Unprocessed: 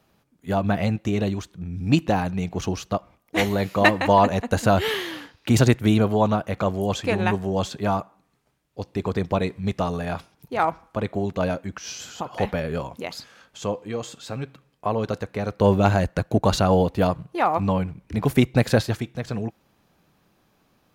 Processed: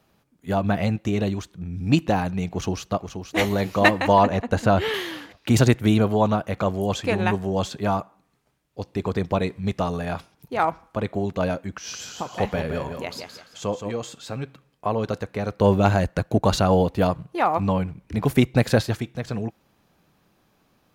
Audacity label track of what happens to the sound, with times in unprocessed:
2.480000	3.400000	echo throw 0.48 s, feedback 45%, level -8 dB
4.230000	4.940000	LPF 3500 Hz 6 dB/oct
11.750000	13.920000	feedback echo 0.171 s, feedback 28%, level -7 dB

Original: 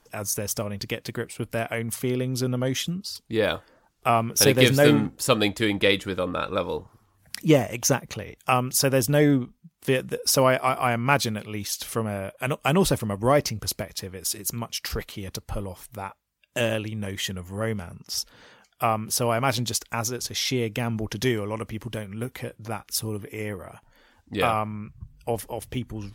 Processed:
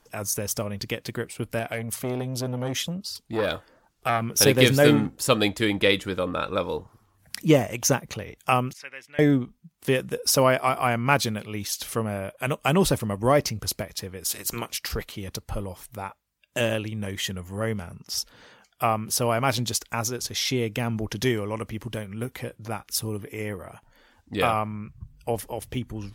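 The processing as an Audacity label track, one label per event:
1.590000	4.220000	core saturation saturates under 1400 Hz
8.730000	9.190000	band-pass 2100 Hz, Q 5.3
14.280000	14.760000	spectral limiter ceiling under each frame's peak by 17 dB

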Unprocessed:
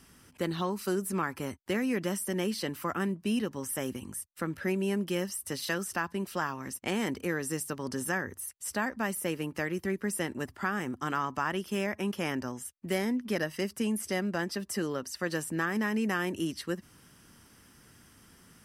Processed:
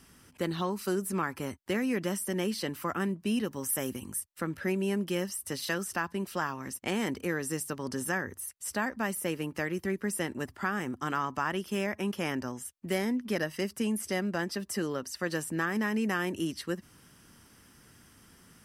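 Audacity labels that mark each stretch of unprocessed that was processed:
3.440000	4.200000	high shelf 11000 Hz +11 dB

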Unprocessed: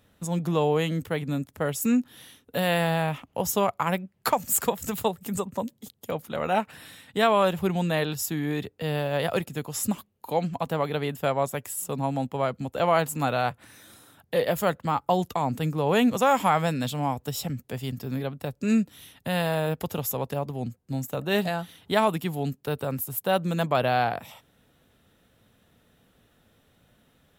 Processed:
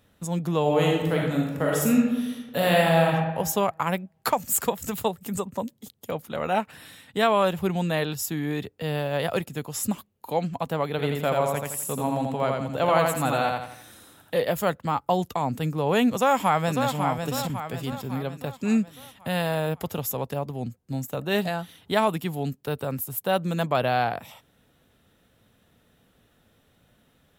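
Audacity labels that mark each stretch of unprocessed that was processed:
0.610000	3.090000	reverb throw, RT60 1.2 s, DRR -2.5 dB
10.900000	14.340000	feedback echo 84 ms, feedback 40%, level -3 dB
16.120000	16.920000	echo throw 0.55 s, feedback 50%, level -6 dB

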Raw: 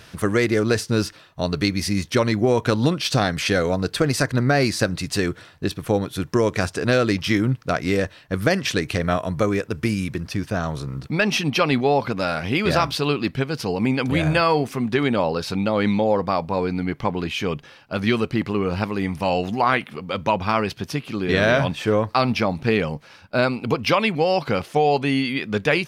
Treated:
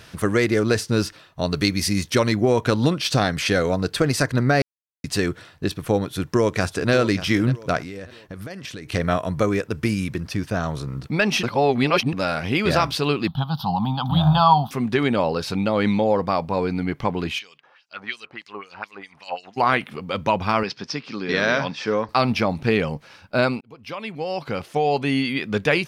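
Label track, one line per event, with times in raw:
1.510000	2.340000	high shelf 4700 Hz +5.5 dB
4.620000	5.040000	mute
6.100000	6.920000	echo throw 0.59 s, feedback 35%, level -13 dB
7.810000	8.920000	compressor 10:1, threshold -31 dBFS
11.430000	12.130000	reverse
13.270000	14.710000	EQ curve 120 Hz 0 dB, 170 Hz +7 dB, 440 Hz -26 dB, 810 Hz +12 dB, 1300 Hz +1 dB, 2200 Hz -29 dB, 3400 Hz +9 dB, 7900 Hz -28 dB, 13000 Hz +3 dB
17.380000	19.560000	LFO band-pass sine 2.3 Hz -> 7.1 Hz 780–6800 Hz
20.630000	22.090000	speaker cabinet 220–5900 Hz, peaks and dips at 350 Hz -6 dB, 650 Hz -6 dB, 3000 Hz -4 dB, 5200 Hz +9 dB
23.610000	25.250000	fade in

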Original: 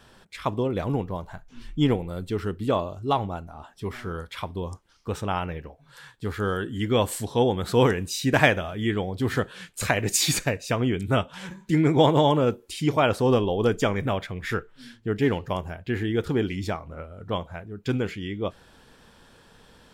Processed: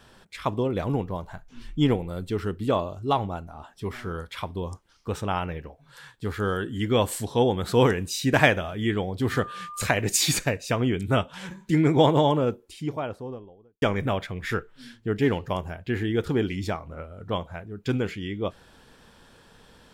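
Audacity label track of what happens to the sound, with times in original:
9.300000	9.820000	whine 1200 Hz -36 dBFS
11.860000	13.820000	studio fade out

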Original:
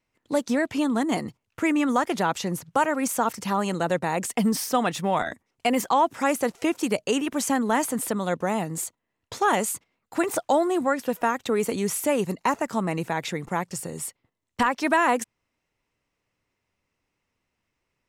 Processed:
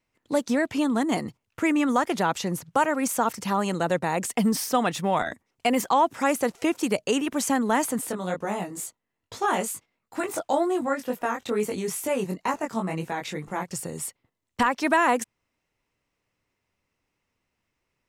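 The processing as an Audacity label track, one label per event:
8.010000	13.680000	chorus 2.2 Hz, delay 19 ms, depth 3.1 ms

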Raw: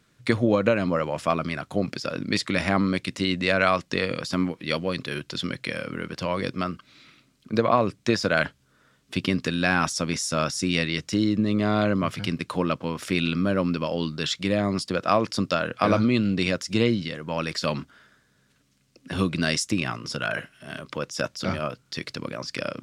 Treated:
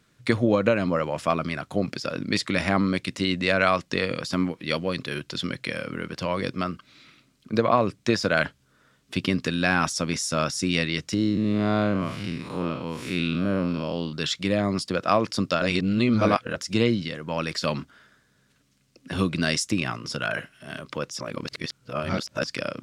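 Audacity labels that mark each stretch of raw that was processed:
11.140000	14.130000	time blur width 0.137 s
15.620000	16.560000	reverse
21.190000	22.440000	reverse

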